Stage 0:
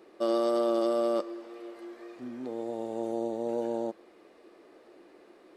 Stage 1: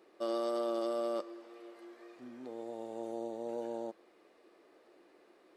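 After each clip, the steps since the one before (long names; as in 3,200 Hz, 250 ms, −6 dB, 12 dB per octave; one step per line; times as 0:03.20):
low-shelf EQ 350 Hz −6 dB
level −5.5 dB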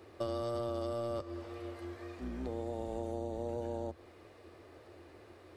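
sub-octave generator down 2 octaves, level 0 dB
downward compressor 6 to 1, threshold −41 dBFS, peak gain reduction 10.5 dB
level +7 dB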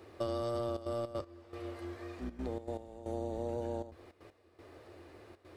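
gate pattern "xxxxxxxx.xx.x..." 157 BPM −12 dB
level +1 dB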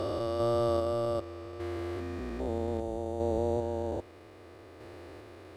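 spectrum averaged block by block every 400 ms
level +8.5 dB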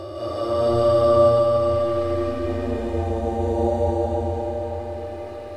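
harmonic-percussive split with one part muted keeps harmonic
echo that builds up and dies away 81 ms, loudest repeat 5, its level −16.5 dB
comb and all-pass reverb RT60 4.5 s, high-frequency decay 0.9×, pre-delay 115 ms, DRR −9.5 dB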